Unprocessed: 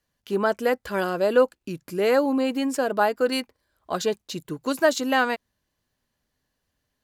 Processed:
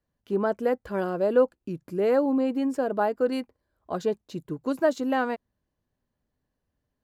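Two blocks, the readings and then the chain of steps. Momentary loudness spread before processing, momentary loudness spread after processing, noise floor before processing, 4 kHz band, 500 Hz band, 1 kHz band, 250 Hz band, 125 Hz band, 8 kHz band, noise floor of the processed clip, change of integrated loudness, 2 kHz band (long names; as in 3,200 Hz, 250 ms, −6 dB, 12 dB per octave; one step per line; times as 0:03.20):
12 LU, 12 LU, −79 dBFS, −12.5 dB, −2.0 dB, −4.5 dB, −0.5 dB, −0.5 dB, below −10 dB, −82 dBFS, −2.5 dB, −8.5 dB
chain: tilt shelving filter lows +7.5 dB, about 1,400 Hz
level −7.5 dB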